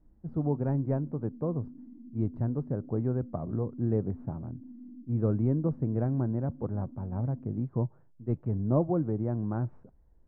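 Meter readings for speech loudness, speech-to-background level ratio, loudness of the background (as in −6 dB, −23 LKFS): −31.5 LKFS, 17.0 dB, −48.5 LKFS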